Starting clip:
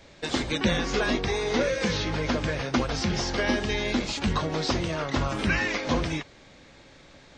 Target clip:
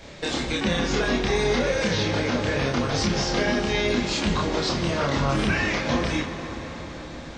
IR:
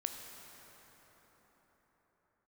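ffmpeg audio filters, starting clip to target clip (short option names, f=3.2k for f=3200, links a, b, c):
-filter_complex "[0:a]alimiter=limit=-23dB:level=0:latency=1:release=427,asplit=2[a][b];[1:a]atrim=start_sample=2205,asetrate=33957,aresample=44100,adelay=29[c];[b][c]afir=irnorm=-1:irlink=0,volume=-1.5dB[d];[a][d]amix=inputs=2:normalize=0,volume=6.5dB"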